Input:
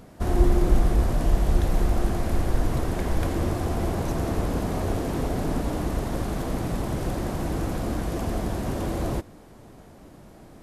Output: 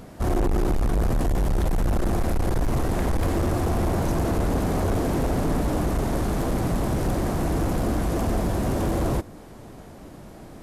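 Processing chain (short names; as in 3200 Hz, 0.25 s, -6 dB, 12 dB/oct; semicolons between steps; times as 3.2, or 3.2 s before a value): dynamic EQ 3100 Hz, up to -3 dB, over -52 dBFS, Q 0.76; overloaded stage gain 24 dB; gain +5 dB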